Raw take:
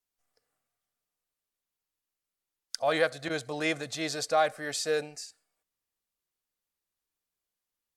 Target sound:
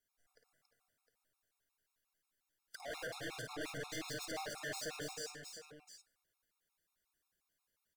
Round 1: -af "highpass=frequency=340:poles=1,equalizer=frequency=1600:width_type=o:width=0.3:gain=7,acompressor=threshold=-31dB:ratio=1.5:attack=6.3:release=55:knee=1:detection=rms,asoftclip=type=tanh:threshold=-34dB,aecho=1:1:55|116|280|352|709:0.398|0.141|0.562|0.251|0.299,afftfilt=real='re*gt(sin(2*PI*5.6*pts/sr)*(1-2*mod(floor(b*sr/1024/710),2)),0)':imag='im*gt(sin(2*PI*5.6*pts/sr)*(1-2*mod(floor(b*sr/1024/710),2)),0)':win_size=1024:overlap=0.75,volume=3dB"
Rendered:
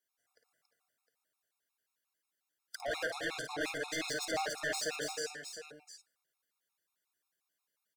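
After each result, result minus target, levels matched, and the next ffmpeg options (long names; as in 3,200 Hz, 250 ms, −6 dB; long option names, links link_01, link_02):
soft clipping: distortion −5 dB; 250 Hz band −2.5 dB
-af "highpass=frequency=340:poles=1,equalizer=frequency=1600:width_type=o:width=0.3:gain=7,acompressor=threshold=-31dB:ratio=1.5:attack=6.3:release=55:knee=1:detection=rms,asoftclip=type=tanh:threshold=-44dB,aecho=1:1:55|116|280|352|709:0.398|0.141|0.562|0.251|0.299,afftfilt=real='re*gt(sin(2*PI*5.6*pts/sr)*(1-2*mod(floor(b*sr/1024/710),2)),0)':imag='im*gt(sin(2*PI*5.6*pts/sr)*(1-2*mod(floor(b*sr/1024/710),2)),0)':win_size=1024:overlap=0.75,volume=3dB"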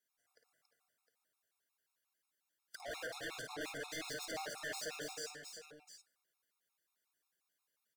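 250 Hz band −2.5 dB
-af "equalizer=frequency=1600:width_type=o:width=0.3:gain=7,acompressor=threshold=-31dB:ratio=1.5:attack=6.3:release=55:knee=1:detection=rms,asoftclip=type=tanh:threshold=-44dB,aecho=1:1:55|116|280|352|709:0.398|0.141|0.562|0.251|0.299,afftfilt=real='re*gt(sin(2*PI*5.6*pts/sr)*(1-2*mod(floor(b*sr/1024/710),2)),0)':imag='im*gt(sin(2*PI*5.6*pts/sr)*(1-2*mod(floor(b*sr/1024/710),2)),0)':win_size=1024:overlap=0.75,volume=3dB"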